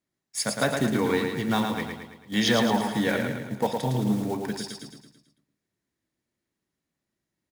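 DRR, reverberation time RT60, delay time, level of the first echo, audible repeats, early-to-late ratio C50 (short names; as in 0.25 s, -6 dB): none, none, 0.11 s, -5.0 dB, 6, none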